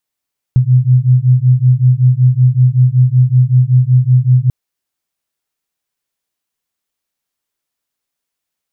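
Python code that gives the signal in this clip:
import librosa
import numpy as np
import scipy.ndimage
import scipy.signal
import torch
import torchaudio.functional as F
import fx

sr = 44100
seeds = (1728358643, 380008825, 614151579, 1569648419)

y = fx.two_tone_beats(sr, length_s=3.94, hz=124.0, beat_hz=5.3, level_db=-9.5)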